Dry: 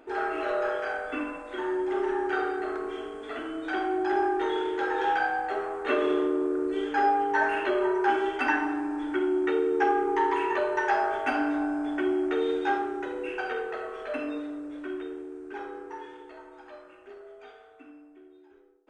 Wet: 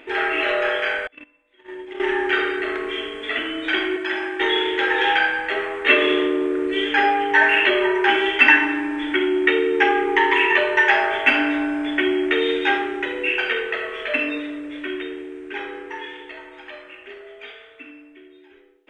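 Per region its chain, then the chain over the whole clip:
1.07–2.00 s: gate -28 dBFS, range -32 dB + peaking EQ 1.5 kHz -4.5 dB 1.4 oct + compression 2.5:1, threshold -39 dBFS
3.96–4.40 s: bass shelf 250 Hz -10 dB + comb of notches 410 Hz
whole clip: high-order bell 2.5 kHz +14.5 dB 1.2 oct; band-stop 760 Hz, Q 12; trim +5.5 dB

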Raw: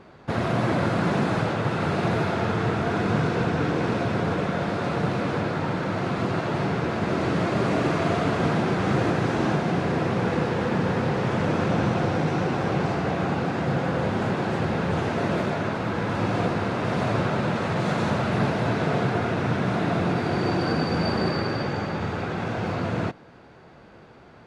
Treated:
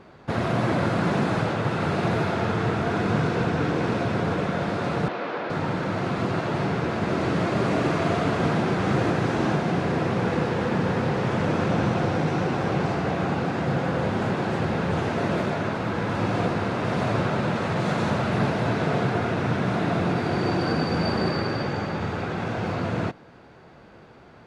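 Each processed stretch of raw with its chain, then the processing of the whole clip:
5.08–5.50 s: band-pass 400–5400 Hz + distance through air 100 m
whole clip: none

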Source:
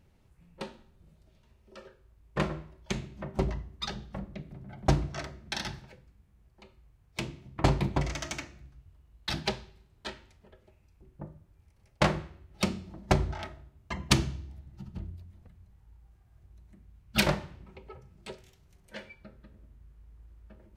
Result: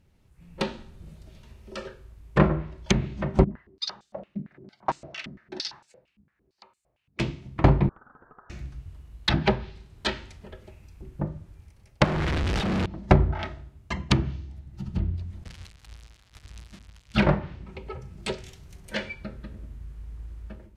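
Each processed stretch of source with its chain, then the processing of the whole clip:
3.44–7.20 s: band-stop 3.3 kHz, Q 18 + step-sequenced band-pass 8.8 Hz 220–7800 Hz
7.89–8.50 s: steep high-pass 2 kHz 72 dB/octave + compression 8:1, threshold -54 dBFS + frequency inversion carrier 3.5 kHz
12.04–12.86 s: one-bit comparator + treble shelf 3.4 kHz +8 dB
15.44–17.17 s: zero-crossing glitches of -32 dBFS + low-pass 4.2 kHz + expander -50 dBFS
whole clip: level rider gain up to 14 dB; peaking EQ 760 Hz -3 dB 2.1 oct; low-pass that closes with the level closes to 1.5 kHz, closed at -18 dBFS

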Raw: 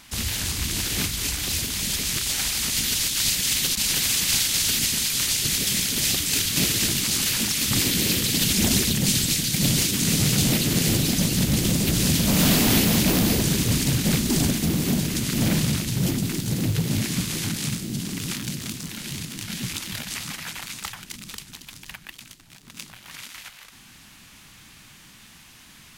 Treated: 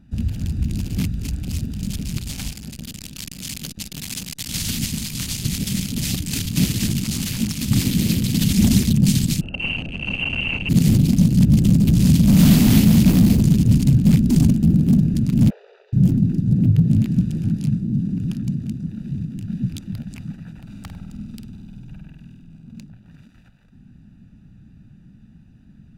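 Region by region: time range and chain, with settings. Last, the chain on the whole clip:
2.53–4.49 s: bass shelf 160 Hz -6.5 dB + transformer saturation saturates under 2.9 kHz
9.41–10.69 s: zero-crossing glitches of -17 dBFS + frequency inversion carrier 2.9 kHz
15.50–15.93 s: brick-wall FIR band-pass 390–9100 Hz + distance through air 270 m
20.62–22.81 s: band-stop 1.8 kHz, Q 7.5 + flutter echo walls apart 8.5 m, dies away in 1.3 s
whole clip: local Wiener filter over 41 samples; resonant low shelf 290 Hz +9 dB, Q 1.5; trim -1 dB

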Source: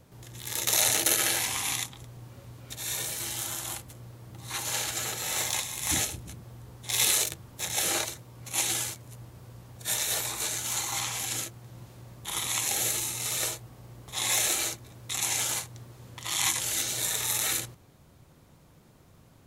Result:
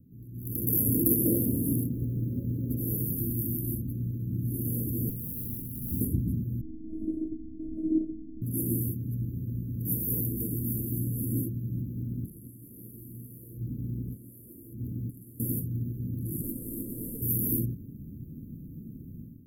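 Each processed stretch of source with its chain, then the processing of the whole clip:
1.25–2.97 s: peaking EQ 800 Hz +15 dB 1.9 oct + short-mantissa float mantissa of 4-bit
5.09–6.01 s: peaking EQ 340 Hz -11.5 dB 0.9 oct + valve stage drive 34 dB, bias 0.6
6.61–8.42 s: comb 5.4 ms, depth 97% + robot voice 318 Hz + tape spacing loss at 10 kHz 44 dB
11.81–15.40 s: compression 20:1, threshold -42 dBFS + loudspeaker Doppler distortion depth 0.42 ms
16.41–17.22 s: CVSD coder 64 kbps + peaking EQ 110 Hz -12.5 dB 2.6 oct + loudspeaker Doppler distortion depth 0.19 ms
whole clip: inverse Chebyshev band-stop 790–6200 Hz, stop band 60 dB; level rider gain up to 14 dB; graphic EQ 250/500/2000/4000 Hz +9/+9/-8/-7 dB; trim -2 dB

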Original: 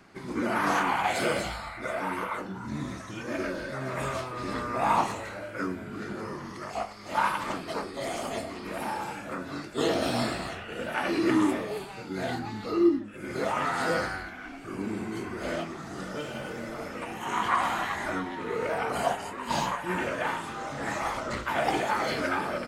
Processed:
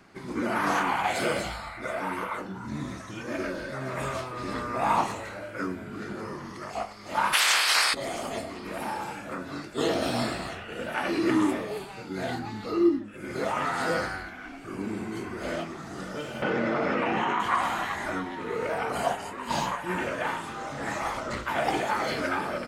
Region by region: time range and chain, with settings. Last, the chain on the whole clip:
7.32–7.93 s: spectral peaks clipped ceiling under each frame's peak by 22 dB + high-pass 1.1 kHz + level flattener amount 70%
16.42–17.40 s: band-pass 140–3000 Hz + level flattener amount 100%
whole clip: none

